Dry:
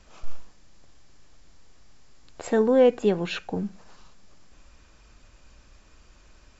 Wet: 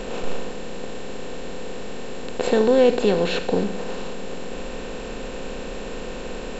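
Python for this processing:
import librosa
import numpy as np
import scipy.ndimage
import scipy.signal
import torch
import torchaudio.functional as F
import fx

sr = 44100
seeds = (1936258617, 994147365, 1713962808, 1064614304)

y = fx.bin_compress(x, sr, power=0.4)
y = fx.peak_eq(y, sr, hz=4300.0, db=5.5, octaves=0.53, at=(2.43, 3.64))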